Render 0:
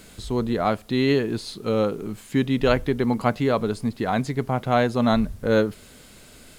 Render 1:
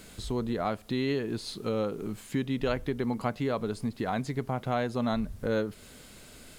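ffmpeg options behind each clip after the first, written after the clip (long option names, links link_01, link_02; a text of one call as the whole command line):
ffmpeg -i in.wav -af "acompressor=threshold=-28dB:ratio=2,volume=-2.5dB" out.wav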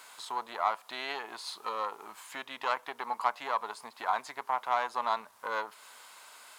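ffmpeg -i in.wav -af "aeval=exprs='0.15*(cos(1*acos(clip(val(0)/0.15,-1,1)))-cos(1*PI/2))+0.0168*(cos(4*acos(clip(val(0)/0.15,-1,1)))-cos(4*PI/2))':channel_layout=same,highpass=frequency=970:width_type=q:width=4.3,volume=-1.5dB" out.wav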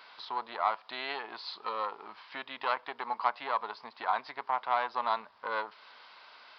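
ffmpeg -i in.wav -af "aresample=11025,aresample=44100" out.wav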